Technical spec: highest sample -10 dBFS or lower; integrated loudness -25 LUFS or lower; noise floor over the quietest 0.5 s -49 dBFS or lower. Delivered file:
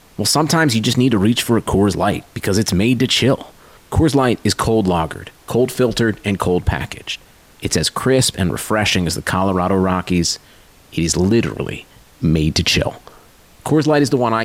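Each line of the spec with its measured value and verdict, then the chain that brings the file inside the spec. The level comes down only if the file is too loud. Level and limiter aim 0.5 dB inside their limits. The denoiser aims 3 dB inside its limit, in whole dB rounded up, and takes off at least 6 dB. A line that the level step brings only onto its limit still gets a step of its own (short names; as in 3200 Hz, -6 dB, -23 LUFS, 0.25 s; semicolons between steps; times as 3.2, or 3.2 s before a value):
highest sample -4.5 dBFS: fail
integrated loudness -17.0 LUFS: fail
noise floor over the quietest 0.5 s -47 dBFS: fail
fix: gain -8.5 dB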